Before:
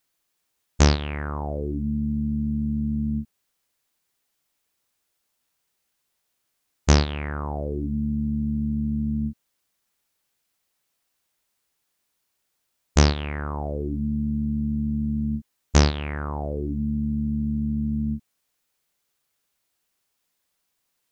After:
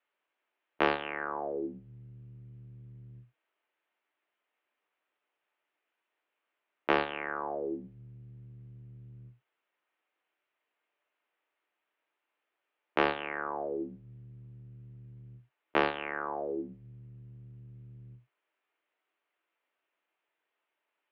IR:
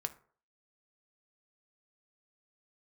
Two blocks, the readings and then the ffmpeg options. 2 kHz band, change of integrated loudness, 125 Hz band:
-0.5 dB, -7.5 dB, -22.5 dB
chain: -filter_complex "[1:a]atrim=start_sample=2205,atrim=end_sample=4410[a];[0:a][a]afir=irnorm=-1:irlink=0,highpass=f=440:t=q:w=0.5412,highpass=f=440:t=q:w=1.307,lowpass=f=3k:t=q:w=0.5176,lowpass=f=3k:t=q:w=0.7071,lowpass=f=3k:t=q:w=1.932,afreqshift=-99"

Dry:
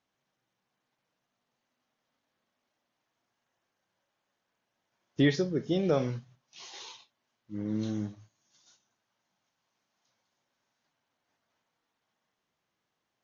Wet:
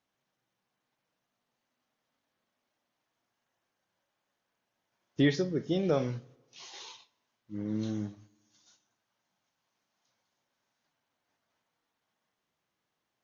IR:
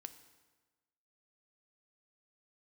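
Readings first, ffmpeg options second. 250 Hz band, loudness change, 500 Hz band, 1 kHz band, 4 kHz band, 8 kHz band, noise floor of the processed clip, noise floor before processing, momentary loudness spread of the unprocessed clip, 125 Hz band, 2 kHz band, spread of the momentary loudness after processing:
-1.0 dB, -1.0 dB, -1.0 dB, -1.0 dB, -1.0 dB, n/a, -84 dBFS, -83 dBFS, 19 LU, -1.5 dB, -1.5 dB, 19 LU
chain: -filter_complex "[0:a]asplit=2[a][b];[1:a]atrim=start_sample=2205[c];[b][c]afir=irnorm=-1:irlink=0,volume=-6.5dB[d];[a][d]amix=inputs=2:normalize=0,volume=-3dB"

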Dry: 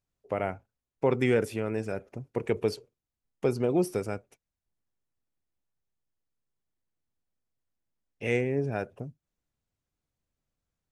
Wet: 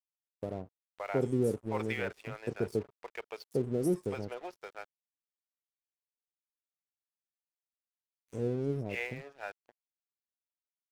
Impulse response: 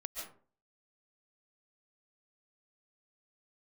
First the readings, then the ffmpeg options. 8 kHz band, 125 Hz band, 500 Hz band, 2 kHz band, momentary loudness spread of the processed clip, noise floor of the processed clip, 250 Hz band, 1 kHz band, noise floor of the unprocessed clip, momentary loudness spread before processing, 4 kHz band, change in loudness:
-4.5 dB, -3.5 dB, -5.5 dB, -4.0 dB, 15 LU, under -85 dBFS, -3.5 dB, -5.0 dB, under -85 dBFS, 14 LU, -5.0 dB, -5.5 dB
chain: -filter_complex "[0:a]acrossover=split=590|5400[a][b][c];[a]adelay=110[d];[b]adelay=680[e];[d][e][c]amix=inputs=3:normalize=0,aeval=exprs='sgn(val(0))*max(abs(val(0))-0.00422,0)':c=same,volume=-2.5dB"

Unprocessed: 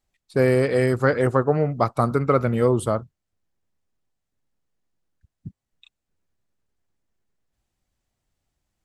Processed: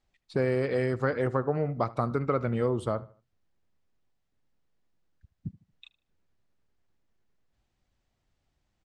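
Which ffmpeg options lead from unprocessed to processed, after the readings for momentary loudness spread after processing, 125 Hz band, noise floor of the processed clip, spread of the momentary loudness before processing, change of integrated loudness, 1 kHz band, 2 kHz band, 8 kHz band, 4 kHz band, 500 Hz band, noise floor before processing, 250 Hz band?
14 LU, -7.5 dB, -79 dBFS, 5 LU, -8.0 dB, -8.0 dB, -8.0 dB, under -15 dB, -7.5 dB, -8.0 dB, -82 dBFS, -7.5 dB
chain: -filter_complex "[0:a]lowpass=5.3k,acompressor=threshold=-33dB:ratio=2,asplit=2[a][b];[b]adelay=76,lowpass=f=3.5k:p=1,volume=-19.5dB,asplit=2[c][d];[d]adelay=76,lowpass=f=3.5k:p=1,volume=0.36,asplit=2[e][f];[f]adelay=76,lowpass=f=3.5k:p=1,volume=0.36[g];[c][e][g]amix=inputs=3:normalize=0[h];[a][h]amix=inputs=2:normalize=0,volume=1.5dB"

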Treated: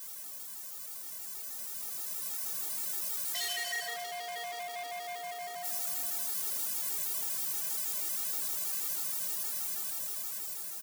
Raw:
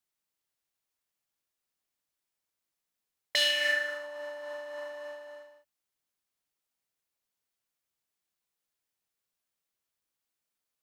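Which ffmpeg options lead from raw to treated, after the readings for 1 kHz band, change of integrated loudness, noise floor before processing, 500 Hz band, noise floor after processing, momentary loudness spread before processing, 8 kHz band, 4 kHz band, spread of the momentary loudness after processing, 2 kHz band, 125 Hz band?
+10.0 dB, -3.0 dB, under -85 dBFS, -5.5 dB, -44 dBFS, 19 LU, +14.5 dB, -6.0 dB, 8 LU, -7.5 dB, n/a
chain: -filter_complex "[0:a]aeval=exprs='val(0)+0.5*0.015*sgn(val(0))':c=same,aeval=exprs='val(0)+0.000708*(sin(2*PI*50*n/s)+sin(2*PI*2*50*n/s)/2+sin(2*PI*3*50*n/s)/3+sin(2*PI*4*50*n/s)/4+sin(2*PI*5*50*n/s)/5)':c=same,asplit=2[a][b];[b]adelay=20,volume=-7dB[c];[a][c]amix=inputs=2:normalize=0,asplit=2[d][e];[e]adelay=641.4,volume=-13dB,highshelf=f=4k:g=-14.4[f];[d][f]amix=inputs=2:normalize=0,afreqshift=120,dynaudnorm=f=490:g=9:m=11dB,equalizer=f=2.7k:t=o:w=2:g=-9.5,asoftclip=type=hard:threshold=-31.5dB,highpass=f=690:p=1,highshelf=f=4.5k:g=5,afftfilt=real='re*gt(sin(2*PI*6.3*pts/sr)*(1-2*mod(floor(b*sr/1024/240),2)),0)':imag='im*gt(sin(2*PI*6.3*pts/sr)*(1-2*mod(floor(b*sr/1024/240),2)),0)':win_size=1024:overlap=0.75"

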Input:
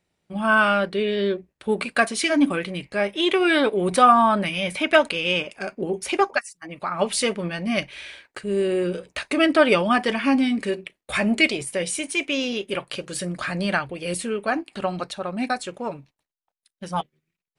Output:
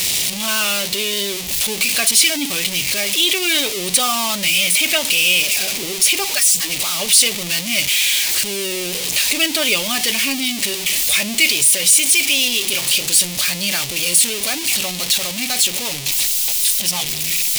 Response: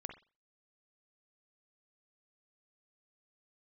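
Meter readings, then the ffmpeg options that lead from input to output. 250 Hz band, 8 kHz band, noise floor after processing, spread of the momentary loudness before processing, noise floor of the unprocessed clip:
-5.0 dB, +21.0 dB, -26 dBFS, 13 LU, -84 dBFS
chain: -af "aeval=exprs='val(0)+0.5*0.119*sgn(val(0))':c=same,aexciter=amount=4.8:drive=9.7:freq=2.2k,volume=-9.5dB"

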